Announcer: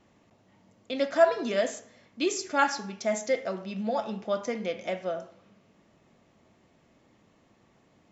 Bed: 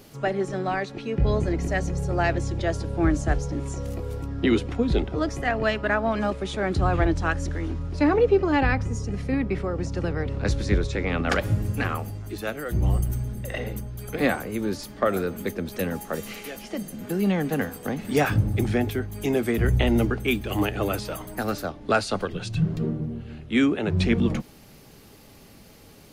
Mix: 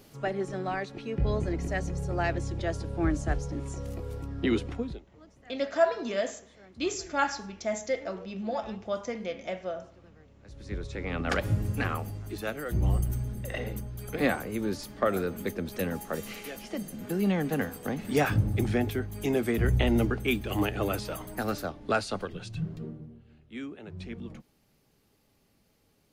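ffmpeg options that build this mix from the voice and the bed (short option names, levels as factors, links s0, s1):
-filter_complex "[0:a]adelay=4600,volume=0.708[s0];[1:a]volume=10,afade=t=out:st=4.7:d=0.3:silence=0.0668344,afade=t=in:st=10.47:d=1.02:silence=0.0530884,afade=t=out:st=21.59:d=1.61:silence=0.177828[s1];[s0][s1]amix=inputs=2:normalize=0"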